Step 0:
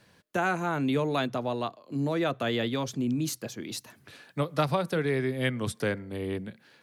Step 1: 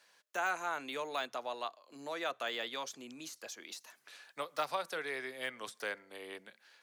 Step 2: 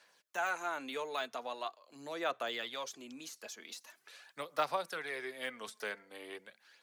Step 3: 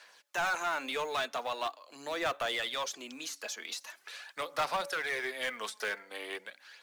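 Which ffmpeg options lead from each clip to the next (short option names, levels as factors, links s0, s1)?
-af "deesser=0.95,highpass=740,equalizer=f=6400:t=o:w=0.77:g=4.5,volume=0.631"
-af "aphaser=in_gain=1:out_gain=1:delay=4.7:decay=0.41:speed=0.43:type=sinusoidal,volume=0.841"
-filter_complex "[0:a]asplit=2[s0][s1];[s1]highpass=f=720:p=1,volume=10,asoftclip=type=tanh:threshold=0.119[s2];[s0][s2]amix=inputs=2:normalize=0,lowpass=f=6800:p=1,volume=0.501,bandreject=f=283.6:t=h:w=4,bandreject=f=567.2:t=h:w=4,bandreject=f=850.8:t=h:w=4,acrusher=bits=7:mode=log:mix=0:aa=0.000001,volume=0.631"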